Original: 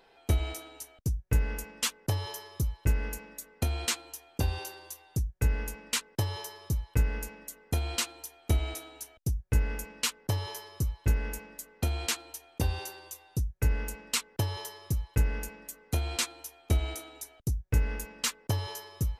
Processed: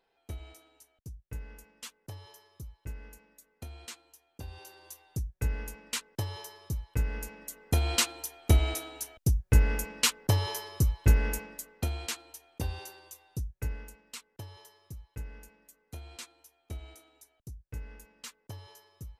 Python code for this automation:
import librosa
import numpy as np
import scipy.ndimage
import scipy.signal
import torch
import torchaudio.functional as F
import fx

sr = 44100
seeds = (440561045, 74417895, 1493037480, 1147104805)

y = fx.gain(x, sr, db=fx.line((4.45, -14.5), (4.89, -4.0), (6.95, -4.0), (7.9, 4.5), (11.35, 4.5), (12.07, -5.0), (13.51, -5.0), (14.03, -14.5)))